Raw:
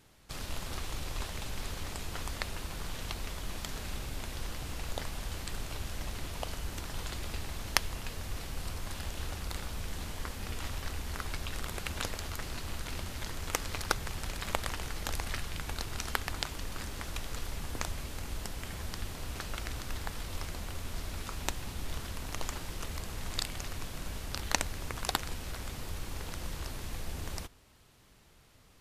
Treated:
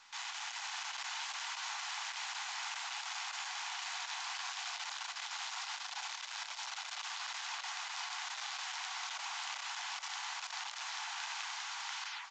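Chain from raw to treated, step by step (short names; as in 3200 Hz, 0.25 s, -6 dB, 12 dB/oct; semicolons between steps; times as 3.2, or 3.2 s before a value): tape stop at the end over 2.70 s; HPF 110 Hz 24 dB/oct; low shelf 310 Hz -8 dB; negative-ratio compressor -45 dBFS, ratio -0.5; running mean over 7 samples; frequency shift +230 Hz; feedback echo 1.044 s, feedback 43%, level -11.5 dB; reverb RT60 0.75 s, pre-delay 5 ms, DRR 13.5 dB; speed mistake 33 rpm record played at 78 rpm; gain +5 dB; A-law 128 kbps 16000 Hz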